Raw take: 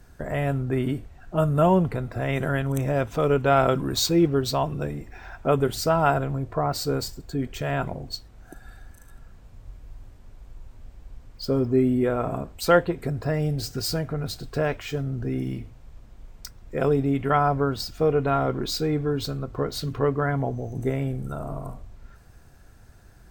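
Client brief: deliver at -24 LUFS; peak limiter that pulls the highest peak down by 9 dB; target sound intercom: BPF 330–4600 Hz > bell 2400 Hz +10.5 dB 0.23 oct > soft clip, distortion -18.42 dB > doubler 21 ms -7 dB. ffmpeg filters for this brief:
-filter_complex "[0:a]alimiter=limit=-14.5dB:level=0:latency=1,highpass=330,lowpass=4.6k,equalizer=f=2.4k:t=o:w=0.23:g=10.5,asoftclip=threshold=-18.5dB,asplit=2[a][b];[b]adelay=21,volume=-7dB[c];[a][c]amix=inputs=2:normalize=0,volume=6dB"

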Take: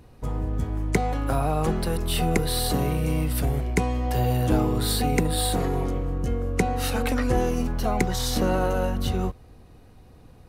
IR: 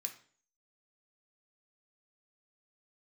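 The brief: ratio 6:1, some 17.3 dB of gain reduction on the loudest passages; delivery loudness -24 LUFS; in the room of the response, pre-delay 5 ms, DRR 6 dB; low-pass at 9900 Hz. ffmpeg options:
-filter_complex "[0:a]lowpass=9.9k,acompressor=threshold=-36dB:ratio=6,asplit=2[a][b];[1:a]atrim=start_sample=2205,adelay=5[c];[b][c]afir=irnorm=-1:irlink=0,volume=-3dB[d];[a][d]amix=inputs=2:normalize=0,volume=15dB"

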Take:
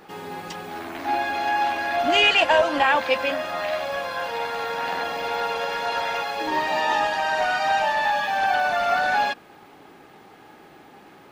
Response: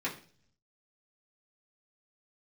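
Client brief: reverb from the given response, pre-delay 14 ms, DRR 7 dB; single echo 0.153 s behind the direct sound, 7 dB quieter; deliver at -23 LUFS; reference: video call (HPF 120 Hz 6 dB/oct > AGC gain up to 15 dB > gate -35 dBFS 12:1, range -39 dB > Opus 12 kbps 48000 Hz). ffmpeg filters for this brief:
-filter_complex "[0:a]aecho=1:1:153:0.447,asplit=2[a][b];[1:a]atrim=start_sample=2205,adelay=14[c];[b][c]afir=irnorm=-1:irlink=0,volume=-12.5dB[d];[a][d]amix=inputs=2:normalize=0,highpass=f=120:p=1,dynaudnorm=m=15dB,agate=range=-39dB:threshold=-35dB:ratio=12,volume=-0.5dB" -ar 48000 -c:a libopus -b:a 12k

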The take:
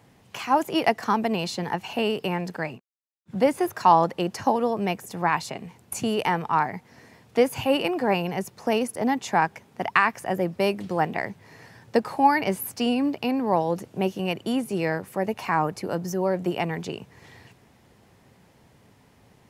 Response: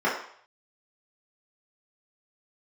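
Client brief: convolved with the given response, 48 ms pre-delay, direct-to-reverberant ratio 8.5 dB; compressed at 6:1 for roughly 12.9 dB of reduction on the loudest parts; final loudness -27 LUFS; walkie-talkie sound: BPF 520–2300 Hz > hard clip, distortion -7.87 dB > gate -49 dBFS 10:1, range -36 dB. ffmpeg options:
-filter_complex "[0:a]acompressor=threshold=-27dB:ratio=6,asplit=2[a][b];[1:a]atrim=start_sample=2205,adelay=48[c];[b][c]afir=irnorm=-1:irlink=0,volume=-24dB[d];[a][d]amix=inputs=2:normalize=0,highpass=520,lowpass=2.3k,asoftclip=type=hard:threshold=-32.5dB,agate=range=-36dB:threshold=-49dB:ratio=10,volume=11.5dB"

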